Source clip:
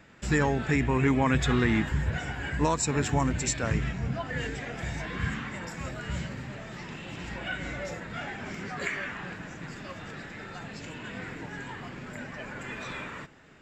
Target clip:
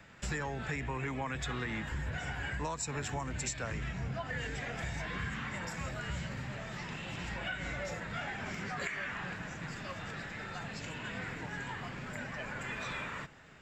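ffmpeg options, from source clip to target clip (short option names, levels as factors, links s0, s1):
-filter_complex "[0:a]acrossover=split=260|390|3400[s0][s1][s2][s3];[s0]asoftclip=type=tanh:threshold=0.0422[s4];[s1]acrusher=bits=3:mix=0:aa=0.000001[s5];[s4][s5][s2][s3]amix=inputs=4:normalize=0,acompressor=threshold=0.02:ratio=6"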